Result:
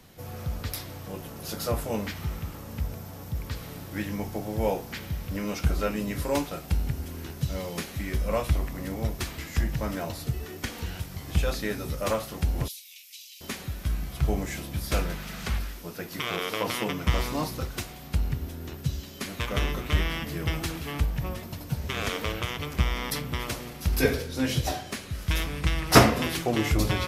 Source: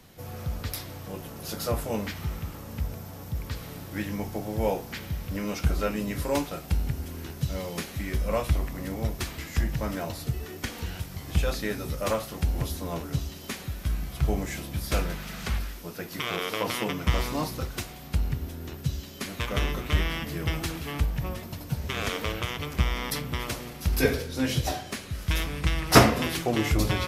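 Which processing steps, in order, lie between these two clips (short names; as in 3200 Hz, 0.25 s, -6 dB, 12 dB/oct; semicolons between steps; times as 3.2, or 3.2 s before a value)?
12.68–13.41 Chebyshev high-pass 2300 Hz, order 5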